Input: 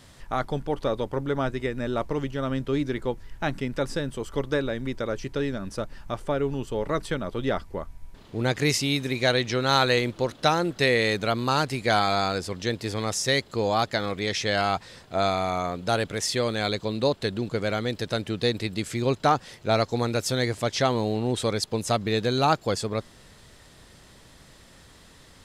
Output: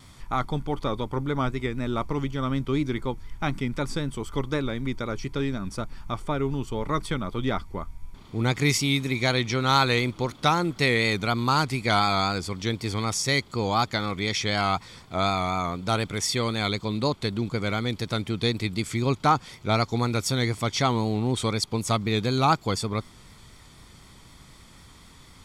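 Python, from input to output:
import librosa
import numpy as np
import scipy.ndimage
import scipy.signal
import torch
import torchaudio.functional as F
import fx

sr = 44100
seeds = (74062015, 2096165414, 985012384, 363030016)

y = fx.vibrato(x, sr, rate_hz=4.0, depth_cents=53.0)
y = y + 0.48 * np.pad(y, (int(0.9 * sr / 1000.0), 0))[:len(y)]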